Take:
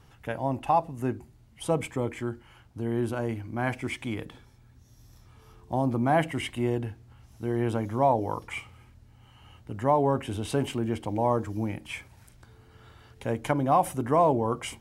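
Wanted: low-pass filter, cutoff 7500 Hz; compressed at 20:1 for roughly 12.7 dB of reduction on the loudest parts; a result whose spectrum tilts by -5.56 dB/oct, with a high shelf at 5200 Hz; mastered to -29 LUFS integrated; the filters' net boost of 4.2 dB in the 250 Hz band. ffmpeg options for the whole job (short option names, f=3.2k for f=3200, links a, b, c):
-af "lowpass=7.5k,equalizer=f=250:t=o:g=5,highshelf=f=5.2k:g=3,acompressor=threshold=-29dB:ratio=20,volume=7dB"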